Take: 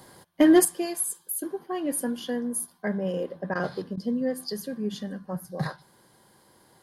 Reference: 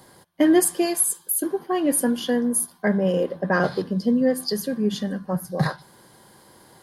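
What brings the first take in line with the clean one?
clip repair -10 dBFS; interpolate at 3.54/3.96, 12 ms; gain 0 dB, from 0.65 s +7.5 dB

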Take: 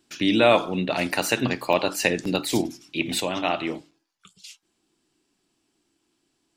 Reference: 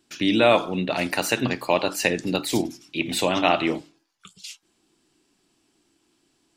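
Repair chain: interpolate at 1.73/2.25/3.91, 4.2 ms; gain correction +5 dB, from 3.2

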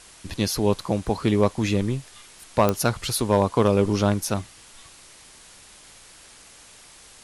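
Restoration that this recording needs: clip repair -9 dBFS; de-click; noise print and reduce 19 dB

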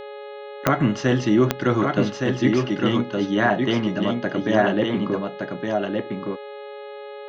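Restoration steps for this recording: de-click; de-hum 417.7 Hz, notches 10; notch 560 Hz, Q 30; inverse comb 1.166 s -4 dB

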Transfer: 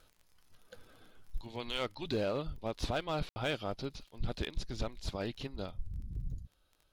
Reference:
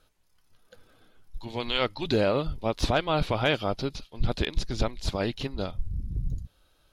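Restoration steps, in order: clip repair -26 dBFS; de-click; room tone fill 3.29–3.36; gain correction +9 dB, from 1.41

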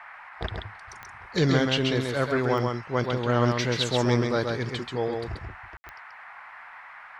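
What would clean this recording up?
de-click; room tone fill 5.77–5.84; noise print and reduce 26 dB; inverse comb 0.133 s -4 dB

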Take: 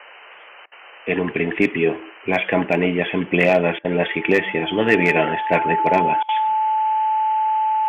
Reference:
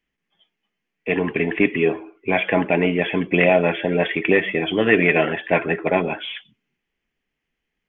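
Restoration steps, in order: clip repair -5.5 dBFS; notch 870 Hz, Q 30; interpolate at 0.66/3.79/6.23, 56 ms; noise print and reduce 30 dB

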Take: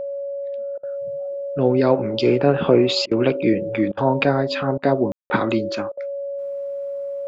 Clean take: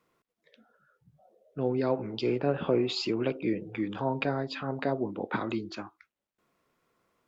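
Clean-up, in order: notch 560 Hz, Q 30; room tone fill 5.12–5.3; interpolate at 0.78/3.06/3.92/4.78/5.21/5.92, 51 ms; gain correction -11 dB, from 0.75

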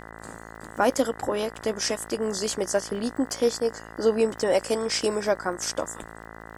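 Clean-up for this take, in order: de-click; de-hum 55.3 Hz, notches 36

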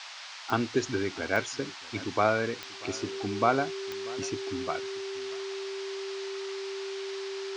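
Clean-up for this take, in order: de-click; notch 390 Hz, Q 30; noise print and reduce 30 dB; inverse comb 0.639 s -20.5 dB

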